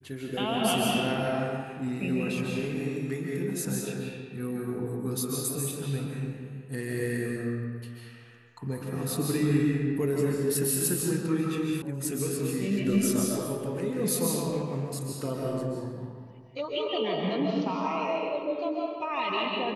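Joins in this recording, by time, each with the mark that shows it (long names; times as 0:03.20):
0:11.82: cut off before it has died away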